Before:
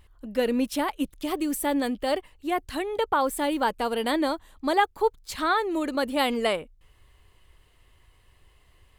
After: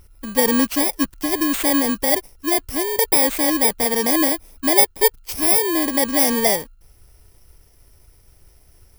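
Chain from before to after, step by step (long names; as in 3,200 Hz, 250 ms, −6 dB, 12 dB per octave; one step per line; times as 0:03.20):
samples in bit-reversed order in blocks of 32 samples
level +7.5 dB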